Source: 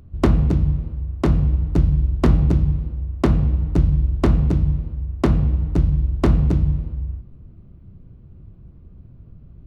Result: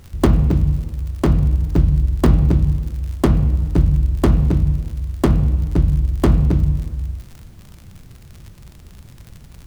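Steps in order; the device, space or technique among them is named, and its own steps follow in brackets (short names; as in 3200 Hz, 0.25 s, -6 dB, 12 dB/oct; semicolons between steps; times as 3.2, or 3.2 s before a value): record under a worn stylus (tracing distortion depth 0.22 ms; crackle 70/s -32 dBFS; pink noise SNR 38 dB); gain +2 dB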